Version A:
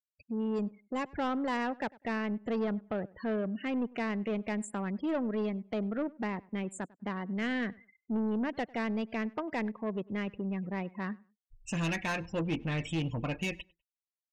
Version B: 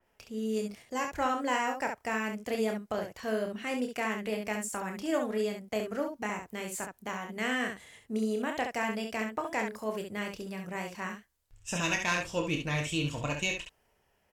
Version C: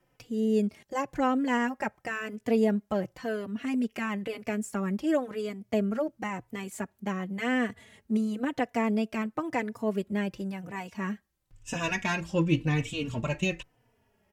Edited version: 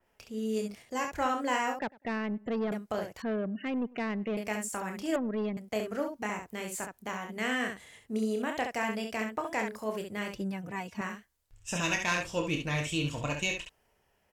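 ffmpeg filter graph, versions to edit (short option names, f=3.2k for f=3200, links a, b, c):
-filter_complex "[0:a]asplit=3[a][b][c];[1:a]asplit=5[d][e][f][g][h];[d]atrim=end=1.792[i];[a]atrim=start=1.788:end=2.722[j];[e]atrim=start=2.718:end=3.222[k];[b]atrim=start=3.218:end=4.372[l];[f]atrim=start=4.368:end=5.162[m];[c]atrim=start=5.158:end=5.572[n];[g]atrim=start=5.568:end=10.352[o];[2:a]atrim=start=10.348:end=11.012[p];[h]atrim=start=11.008[q];[i][j]acrossfade=d=0.004:c1=hsin:c2=hsin[r];[r][k]acrossfade=d=0.004:c1=hsin:c2=hsin[s];[s][l]acrossfade=d=0.004:c1=hsin:c2=hsin[t];[t][m]acrossfade=d=0.004:c1=hsin:c2=hsin[u];[u][n]acrossfade=d=0.004:c1=hsin:c2=hsin[v];[v][o]acrossfade=d=0.004:c1=hsin:c2=hsin[w];[w][p]acrossfade=d=0.004:c1=hsin:c2=hsin[x];[x][q]acrossfade=d=0.004:c1=hsin:c2=hsin"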